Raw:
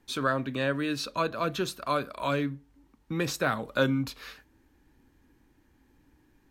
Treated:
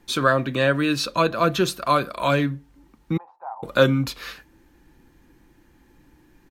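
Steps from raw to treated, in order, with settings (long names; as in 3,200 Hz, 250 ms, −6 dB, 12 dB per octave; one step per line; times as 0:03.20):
0:03.17–0:03.63: flat-topped band-pass 850 Hz, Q 5.2
comb filter 5.8 ms, depth 32%
level +8 dB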